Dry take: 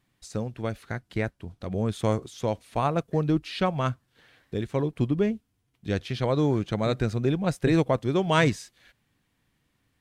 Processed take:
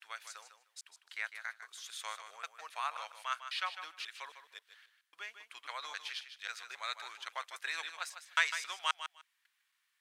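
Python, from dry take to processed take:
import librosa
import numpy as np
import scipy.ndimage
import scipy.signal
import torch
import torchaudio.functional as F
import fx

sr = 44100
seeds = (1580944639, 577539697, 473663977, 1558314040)

y = fx.block_reorder(x, sr, ms=270.0, group=3)
y = scipy.signal.sosfilt(scipy.signal.butter(4, 1200.0, 'highpass', fs=sr, output='sos'), y)
y = fx.echo_feedback(y, sr, ms=152, feedback_pct=16, wet_db=-10.0)
y = y * librosa.db_to_amplitude(-2.5)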